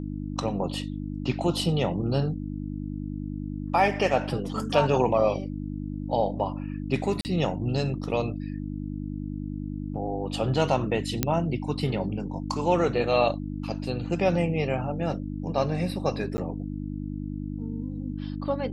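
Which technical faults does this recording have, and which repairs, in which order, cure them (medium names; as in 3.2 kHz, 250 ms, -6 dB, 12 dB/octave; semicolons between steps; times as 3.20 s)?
hum 50 Hz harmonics 6 -33 dBFS
7.21–7.25 s: dropout 39 ms
11.23 s: pop -7 dBFS
16.37–16.38 s: dropout 10 ms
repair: de-click; de-hum 50 Hz, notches 6; interpolate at 7.21 s, 39 ms; interpolate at 16.37 s, 10 ms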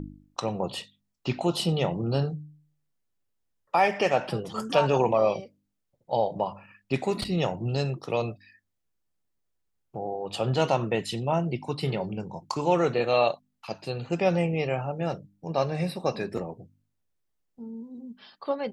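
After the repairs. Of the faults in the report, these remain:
nothing left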